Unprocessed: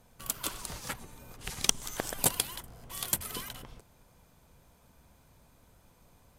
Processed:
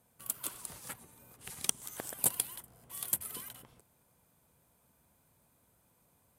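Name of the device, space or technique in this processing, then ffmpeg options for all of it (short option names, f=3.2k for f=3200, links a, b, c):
budget condenser microphone: -af "highpass=87,highshelf=f=7.5k:t=q:w=1.5:g=6.5,volume=-8.5dB"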